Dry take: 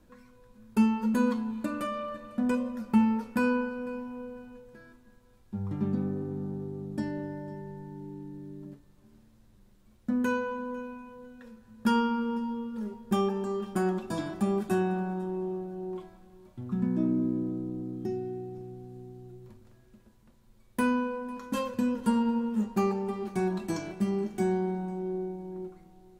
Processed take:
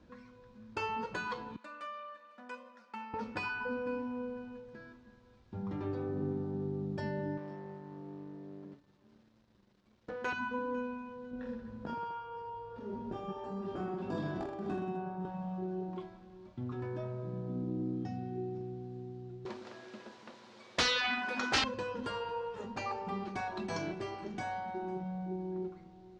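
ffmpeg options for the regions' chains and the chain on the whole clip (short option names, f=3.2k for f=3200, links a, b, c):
-filter_complex "[0:a]asettb=1/sr,asplit=3[a][b][c];[a]atrim=end=1.564[d];[b]atrim=start=1.56:end=3.14,asetpts=PTS-STARTPTS,afade=t=in:d=0.004:c=qsin,afade=t=out:st=1.576:d=0.004:c=qsin,highpass=1.3k,equalizer=f=3.7k:w=0.35:g=-9.5[e];[c]atrim=start=3.136[f];[d][e]acrossfade=d=0.004:c1=hsin:c2=qsin[g];[g][f]acrossfade=d=0.004:c1=qsin:c2=hsin,asettb=1/sr,asplit=3[h][i][j];[h]atrim=end=7.374[k];[i]atrim=start=7.37:end=10.33,asetpts=PTS-STARTPTS,afade=t=in:d=0.004:c=qsin,afade=t=out:st=2.956:d=0.004:c=qsin,aeval=exprs='if(lt(val(0),0),0.447*val(0),val(0))':c=same,lowshelf=f=140:g=-12[l];[j]atrim=start=10.326[m];[k][l]acrossfade=d=0.004:c1=hsin:c2=qsin[n];[n][m]acrossfade=d=0.004:c1=qsin:c2=hsin,asettb=1/sr,asplit=3[o][p][q];[o]atrim=end=11.314[r];[p]atrim=start=11.31:end=15.25,asetpts=PTS-STARTPTS,afade=t=in:d=0.004:c=qsin,afade=t=out:st=3.936:d=0.004:c=qsin,tiltshelf=f=1.1k:g=4.5,acompressor=threshold=-35dB:ratio=10:attack=3.2:release=140:knee=1:detection=peak,aecho=1:1:20|46|79.8|123.7|180.9|255.1:0.794|0.631|0.501|0.398|0.316|0.251,atrim=end_sample=173754[s];[q]atrim=start=15.246[t];[r][s]acrossfade=d=0.004:c1=hsin:c2=qsin[u];[u][t]acrossfade=d=0.004:c1=qsin:c2=hsin,asettb=1/sr,asplit=3[v][w][x];[v]atrim=end=19.454[y];[w]atrim=start=19.45:end=21.64,asetpts=PTS-STARTPTS,afade=t=in:d=0.004:c=qsin,afade=t=out:st=2.186:d=0.004:c=qsin,highpass=440,aeval=exprs='0.0944*sin(PI/2*4.47*val(0)/0.0944)':c=same[z];[x]atrim=start=21.636[aa];[y][z]acrossfade=d=0.004:c1=hsin:c2=qsin[ab];[ab][aa]acrossfade=d=0.004:c1=qsin:c2=hsin,highpass=47,afftfilt=real='re*lt(hypot(re,im),0.158)':imag='im*lt(hypot(re,im),0.158)':win_size=1024:overlap=0.75,lowpass=f=5.5k:w=0.5412,lowpass=f=5.5k:w=1.3066,volume=1dB"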